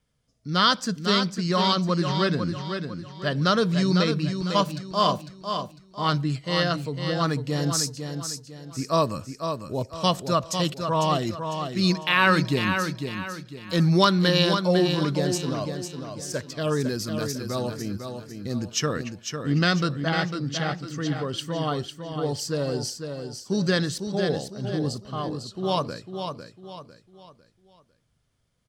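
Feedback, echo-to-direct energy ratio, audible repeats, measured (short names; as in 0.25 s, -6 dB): 37%, -6.5 dB, 4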